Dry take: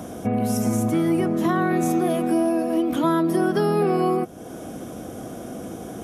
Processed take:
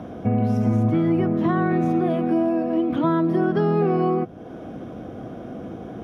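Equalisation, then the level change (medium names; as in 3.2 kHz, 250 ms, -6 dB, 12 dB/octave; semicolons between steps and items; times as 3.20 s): dynamic bell 120 Hz, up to +7 dB, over -41 dBFS, Q 1.4; distance through air 310 m; treble shelf 8.1 kHz +4 dB; 0.0 dB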